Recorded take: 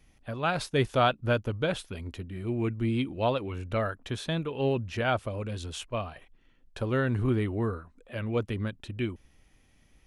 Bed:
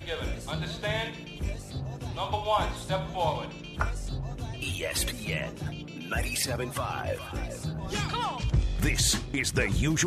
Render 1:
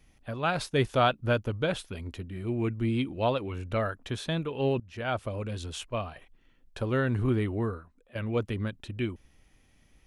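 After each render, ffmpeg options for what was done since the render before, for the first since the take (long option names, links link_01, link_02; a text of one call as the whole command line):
ffmpeg -i in.wav -filter_complex "[0:a]asplit=3[link_01][link_02][link_03];[link_01]atrim=end=4.8,asetpts=PTS-STARTPTS,afade=type=out:start_time=4.796:duration=0.004:curve=hsin:silence=0.112202[link_04];[link_02]atrim=start=4.8:end=8.15,asetpts=PTS-STARTPTS,afade=type=in:duration=0.49:silence=0.112202,afade=type=out:start_time=2.77:duration=0.58:silence=0.251189[link_05];[link_03]atrim=start=8.15,asetpts=PTS-STARTPTS,afade=type=in:duration=0.004:curve=hsin:silence=0.251189[link_06];[link_04][link_05][link_06]concat=n=3:v=0:a=1" out.wav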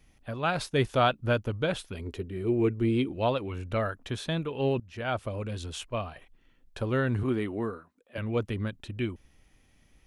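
ffmpeg -i in.wav -filter_complex "[0:a]asettb=1/sr,asplit=3[link_01][link_02][link_03];[link_01]atrim=end=1.994[link_04];[link_02]atrim=start=1.99:end=3.12,asetpts=PTS-STARTPTS,afade=type=in:duration=0.004:curve=qsin,afade=type=out:start_time=1.126:duration=0.004:curve=qsin,equalizer=frequency=410:width_type=o:width=0.49:gain=11.5[link_05];[link_03]atrim=start=3.116[link_06];[link_04][link_05]acrossfade=duration=0.004:curve1=hsin:curve2=qsin[link_07];[link_07][link_06]acrossfade=duration=0.004:curve1=qsin:curve2=hsin,asettb=1/sr,asplit=3[link_08][link_09][link_10];[link_08]atrim=end=7.234[link_11];[link_09]atrim=start=7.23:end=8.18,asetpts=PTS-STARTPTS,afade=type=in:duration=0.004:curve=qsin,afade=type=out:start_time=0.946:duration=0.004:curve=qsin,highpass=170[link_12];[link_10]atrim=start=8.176[link_13];[link_11][link_12]acrossfade=duration=0.004:curve1=hsin:curve2=qsin[link_14];[link_14][link_13]acrossfade=duration=0.004:curve1=qsin:curve2=hsin" out.wav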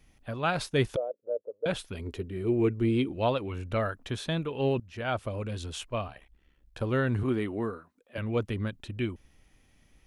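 ffmpeg -i in.wav -filter_complex "[0:a]asettb=1/sr,asplit=3[link_01][link_02][link_03];[link_01]atrim=end=0.964[link_04];[link_02]atrim=start=0.96:end=1.66,asetpts=PTS-STARTPTS,afade=type=in:duration=0.004:curve=qsin,afade=type=out:start_time=0.696:duration=0.004:curve=qsin,asuperpass=centerf=510:order=4:qfactor=3.5[link_05];[link_03]atrim=start=1.656[link_06];[link_04][link_05]acrossfade=duration=0.004:curve1=hsin:curve2=qsin[link_07];[link_07][link_06]acrossfade=duration=0.004:curve1=qsin:curve2=hsin,asettb=1/sr,asplit=3[link_08][link_09][link_10];[link_08]atrim=end=6.074[link_11];[link_09]atrim=start=6.07:end=6.81,asetpts=PTS-STARTPTS,afade=type=in:duration=0.004:curve=qsin,afade=type=out:start_time=0.736:duration=0.004:curve=qsin,aeval=exprs='val(0)*sin(2*PI*35*n/s)':channel_layout=same[link_12];[link_10]atrim=start=6.806[link_13];[link_11][link_12]acrossfade=duration=0.004:curve1=hsin:curve2=qsin[link_14];[link_14][link_13]acrossfade=duration=0.004:curve1=qsin:curve2=hsin" out.wav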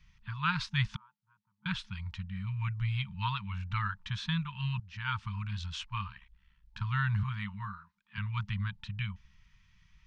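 ffmpeg -i in.wav -af "lowpass=frequency=5600:width=0.5412,lowpass=frequency=5600:width=1.3066,afftfilt=real='re*(1-between(b*sr/4096,210,880))':imag='im*(1-between(b*sr/4096,210,880))':win_size=4096:overlap=0.75" out.wav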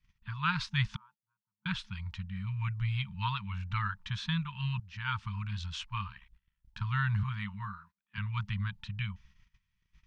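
ffmpeg -i in.wav -af "agate=range=-16dB:threshold=-58dB:ratio=16:detection=peak" out.wav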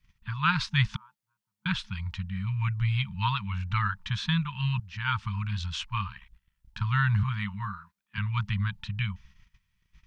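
ffmpeg -i in.wav -af "volume=5.5dB" out.wav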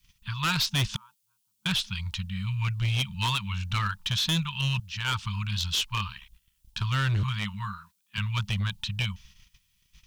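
ffmpeg -i in.wav -af "aexciter=amount=2.1:drive=9.1:freq=2700,asoftclip=type=hard:threshold=-22dB" out.wav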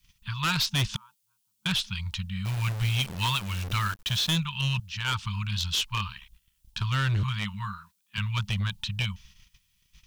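ffmpeg -i in.wav -filter_complex "[0:a]asettb=1/sr,asplit=3[link_01][link_02][link_03];[link_01]atrim=end=2.454[link_04];[link_02]atrim=start=2.45:end=4.36,asetpts=PTS-STARTPTS,afade=type=in:duration=0.004:curve=qsin,afade=type=out:start_time=1.906:duration=0.004:curve=qsin,acrusher=bits=7:dc=4:mix=0:aa=0.000001[link_05];[link_03]atrim=start=4.356[link_06];[link_04][link_05]acrossfade=duration=0.004:curve1=hsin:curve2=qsin[link_07];[link_07][link_06]acrossfade=duration=0.004:curve1=qsin:curve2=hsin" out.wav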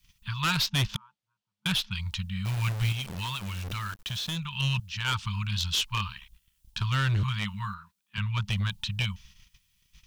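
ffmpeg -i in.wav -filter_complex "[0:a]asettb=1/sr,asplit=3[link_01][link_02][link_03];[link_01]atrim=end=0.544[link_04];[link_02]atrim=start=0.54:end=1.92,asetpts=PTS-STARTPTS,afade=type=in:duration=0.004:curve=qsin,afade=type=out:start_time=1.376:duration=0.004:curve=qsin,adynamicsmooth=sensitivity=6:basefreq=2700[link_05];[link_03]atrim=start=1.916[link_06];[link_04][link_05]acrossfade=duration=0.004:curve1=hsin:curve2=qsin[link_07];[link_07][link_06]acrossfade=duration=0.004:curve1=qsin:curve2=hsin,asettb=1/sr,asplit=3[link_08][link_09][link_10];[link_08]atrim=end=2.924[link_11];[link_09]atrim=start=2.92:end=4.56,asetpts=PTS-STARTPTS,afade=type=in:duration=0.004:curve=qsin,afade=type=out:start_time=1.636:duration=0.004:curve=qsin,acompressor=threshold=-31dB:ratio=4:attack=3.2:release=140:knee=1:detection=peak[link_12];[link_10]atrim=start=4.556[link_13];[link_11][link_12]acrossfade=duration=0.004:curve1=hsin:curve2=qsin[link_14];[link_14][link_13]acrossfade=duration=0.004:curve1=qsin:curve2=hsin,asettb=1/sr,asplit=3[link_15][link_16][link_17];[link_15]atrim=end=7.744[link_18];[link_16]atrim=start=7.74:end=8.48,asetpts=PTS-STARTPTS,afade=type=in:duration=0.004:curve=qsin,afade=type=out:start_time=0.736:duration=0.004:curve=qsin,highshelf=frequency=3800:gain=-8.5[link_19];[link_17]atrim=start=8.476[link_20];[link_18][link_19]acrossfade=duration=0.004:curve1=hsin:curve2=qsin[link_21];[link_21][link_20]acrossfade=duration=0.004:curve1=qsin:curve2=hsin" out.wav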